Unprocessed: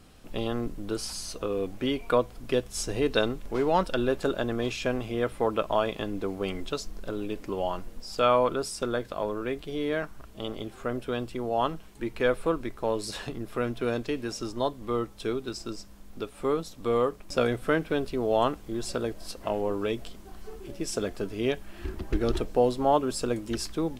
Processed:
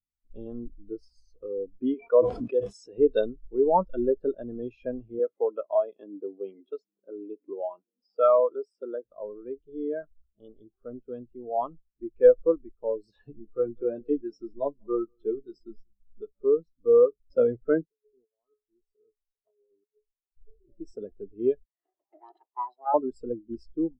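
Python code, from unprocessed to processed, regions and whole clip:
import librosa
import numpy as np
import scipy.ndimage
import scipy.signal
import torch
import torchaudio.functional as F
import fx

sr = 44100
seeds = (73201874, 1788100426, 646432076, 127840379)

y = fx.chain(x, sr, fx.highpass(hz=370.0, slope=6),
    fx.sustainer(db_per_s=24.0), at=(1.94, 2.98))
y = fx.chain(y, sr, fx.highpass(hz=240.0, slope=12),
    fx.high_shelf(hz=8200.0, db=-4.0),
    fx.band_squash(depth_pct=40), at=(5.19, 9.05))
y = fx.chain(y, sr, fx.hum_notches(base_hz=50, count=2),
    fx.doubler(ms=14.0, db=-5.0),
    fx.echo_single(ms=190, db=-18.5), at=(13.16, 16.44))
y = fx.chain(y, sr, fx.comb_fb(f0_hz=420.0, decay_s=0.36, harmonics='odd', damping=0.0, mix_pct=90),
    fx.over_compress(threshold_db=-45.0, ratio=-0.5), at=(17.85, 20.37))
y = fx.chain(y, sr, fx.lower_of_two(delay_ms=1.0),
    fx.highpass(hz=380.0, slope=24), at=(21.65, 22.94))
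y = scipy.signal.sosfilt(scipy.signal.butter(2, 9800.0, 'lowpass', fs=sr, output='sos'), y)
y = fx.spectral_expand(y, sr, expansion=2.5)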